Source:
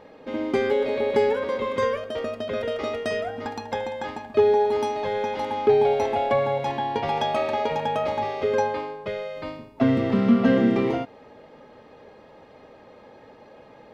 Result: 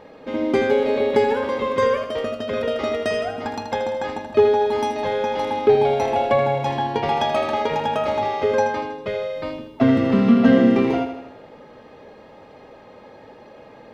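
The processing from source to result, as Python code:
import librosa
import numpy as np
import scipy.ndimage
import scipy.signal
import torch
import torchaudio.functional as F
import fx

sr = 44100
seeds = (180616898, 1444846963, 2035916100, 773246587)

y = fx.echo_feedback(x, sr, ms=80, feedback_pct=54, wet_db=-9.0)
y = y * librosa.db_to_amplitude(3.5)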